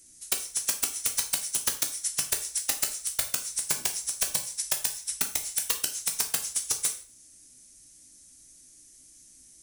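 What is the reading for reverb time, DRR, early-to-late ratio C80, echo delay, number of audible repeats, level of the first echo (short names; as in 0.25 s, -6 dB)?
0.40 s, 4.0 dB, 15.5 dB, none, none, none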